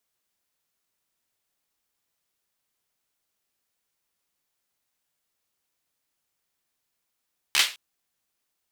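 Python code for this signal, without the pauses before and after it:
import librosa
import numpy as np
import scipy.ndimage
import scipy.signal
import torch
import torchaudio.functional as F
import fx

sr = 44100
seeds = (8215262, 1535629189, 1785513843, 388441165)

y = fx.drum_clap(sr, seeds[0], length_s=0.21, bursts=4, spacing_ms=14, hz=2900.0, decay_s=0.3)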